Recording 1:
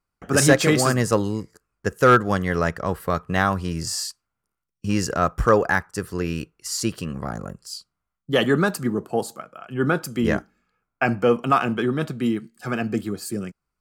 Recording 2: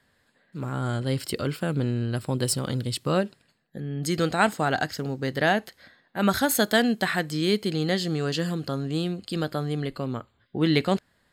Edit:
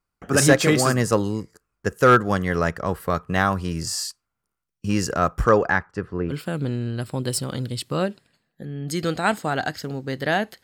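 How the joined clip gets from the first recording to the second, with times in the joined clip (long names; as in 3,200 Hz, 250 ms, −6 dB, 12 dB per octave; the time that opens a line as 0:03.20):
recording 1
0:05.44–0:06.34: low-pass filter 9,200 Hz → 1,000 Hz
0:06.31: continue with recording 2 from 0:01.46, crossfade 0.06 s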